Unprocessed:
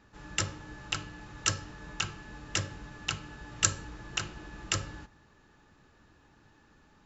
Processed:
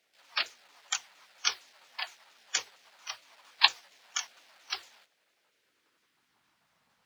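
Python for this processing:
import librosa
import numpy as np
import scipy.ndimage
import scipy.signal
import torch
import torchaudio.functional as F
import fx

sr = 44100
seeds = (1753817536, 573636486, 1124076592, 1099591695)

p1 = fx.pitch_ramps(x, sr, semitones=-9.0, every_ms=230)
p2 = fx.quant_dither(p1, sr, seeds[0], bits=8, dither='none')
p3 = p1 + F.gain(torch.from_numpy(p2), -7.0).numpy()
p4 = fx.peak_eq(p3, sr, hz=280.0, db=-3.0, octaves=0.43)
p5 = fx.noise_reduce_blind(p4, sr, reduce_db=11)
p6 = fx.peak_eq(p5, sr, hz=4400.0, db=6.5, octaves=2.0)
p7 = fx.dmg_noise_colour(p6, sr, seeds[1], colour='brown', level_db=-57.0)
p8 = fx.filter_sweep_highpass(p7, sr, from_hz=1000.0, to_hz=370.0, start_s=5.34, end_s=6.79, q=1.8)
p9 = fx.spec_gate(p8, sr, threshold_db=-10, keep='weak')
y = F.gain(torch.from_numpy(p9), 1.0).numpy()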